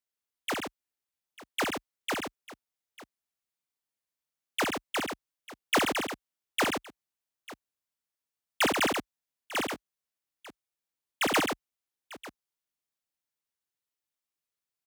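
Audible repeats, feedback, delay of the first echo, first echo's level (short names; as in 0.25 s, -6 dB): 3, no steady repeat, 62 ms, -4.0 dB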